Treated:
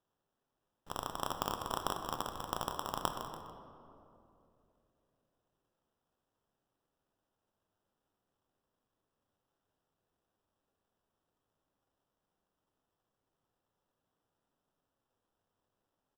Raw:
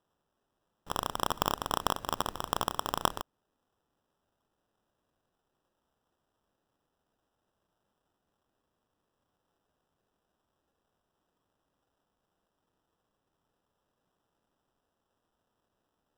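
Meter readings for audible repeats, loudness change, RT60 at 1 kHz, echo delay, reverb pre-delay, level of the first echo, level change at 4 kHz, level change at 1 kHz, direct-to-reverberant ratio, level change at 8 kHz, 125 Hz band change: 2, -6.5 dB, 2.5 s, 195 ms, 7 ms, -15.5 dB, -7.0 dB, -5.5 dB, 5.0 dB, -6.0 dB, -4.5 dB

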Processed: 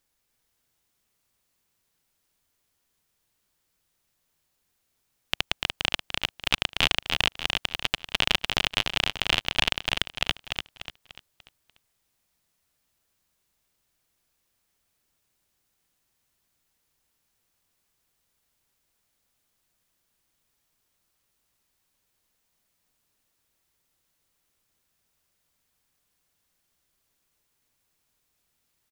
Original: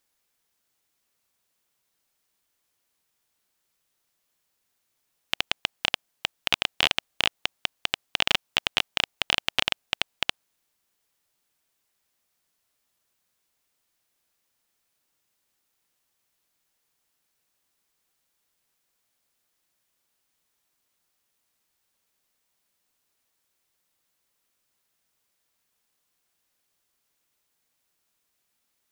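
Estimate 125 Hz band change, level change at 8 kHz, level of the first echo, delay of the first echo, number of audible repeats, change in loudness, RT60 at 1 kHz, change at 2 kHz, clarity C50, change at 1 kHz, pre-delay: +7.5 dB, +0.5 dB, -4.0 dB, 294 ms, 4, +0.5 dB, no reverb, +0.5 dB, no reverb, +1.0 dB, no reverb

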